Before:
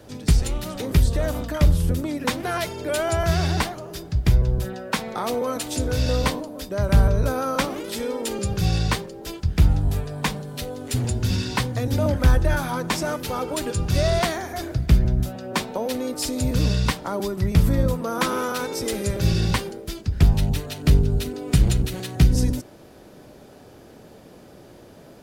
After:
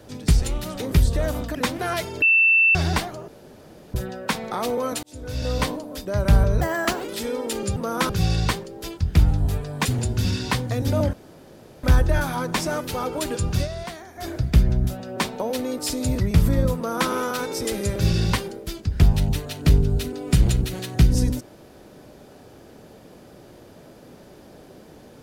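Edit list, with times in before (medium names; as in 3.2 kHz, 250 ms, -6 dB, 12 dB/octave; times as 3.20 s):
1.55–2.19 s: delete
2.86–3.39 s: bleep 2.67 kHz -13 dBFS
3.92–4.58 s: room tone
5.67–6.36 s: fade in
7.25–7.80 s: speed 127%
10.28–10.91 s: delete
12.19 s: insert room tone 0.70 s
13.92–14.63 s: dip -12 dB, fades 0.12 s
16.55–17.40 s: delete
17.97–18.30 s: copy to 8.52 s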